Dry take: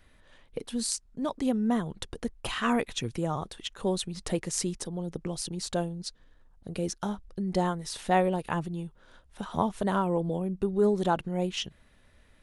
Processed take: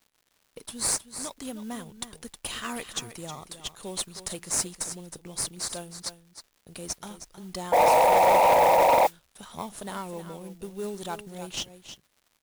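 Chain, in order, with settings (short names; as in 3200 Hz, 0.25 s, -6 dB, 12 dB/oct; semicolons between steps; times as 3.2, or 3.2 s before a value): pre-emphasis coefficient 0.9; gate with hold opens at -55 dBFS; in parallel at -10 dB: sample-and-hold 14×; on the sum: crackle 210/s -56 dBFS; echo 0.315 s -11.5 dB; painted sound noise, 7.72–9.07, 470–990 Hz -20 dBFS; modulation noise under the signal 20 dB; soft clip -21.5 dBFS, distortion -9 dB; gain +6.5 dB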